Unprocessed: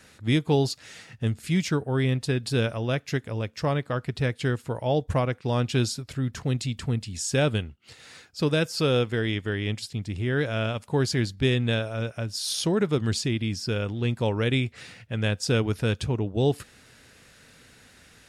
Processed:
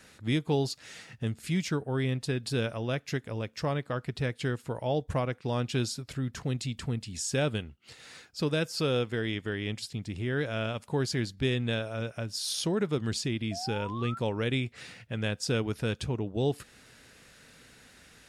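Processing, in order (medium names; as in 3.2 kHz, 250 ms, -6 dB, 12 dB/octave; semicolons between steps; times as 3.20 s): peaking EQ 93 Hz -4.5 dB 0.56 oct; in parallel at -2.5 dB: compression, threshold -32 dBFS, peak gain reduction 13.5 dB; on the sum: painted sound rise, 13.51–14.19 s, 650–1400 Hz -34 dBFS; trim -6.5 dB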